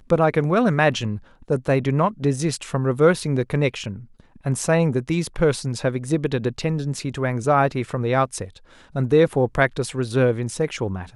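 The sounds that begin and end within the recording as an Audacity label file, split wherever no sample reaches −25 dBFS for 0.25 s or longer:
1.500000	3.940000	sound
4.460000	8.440000	sound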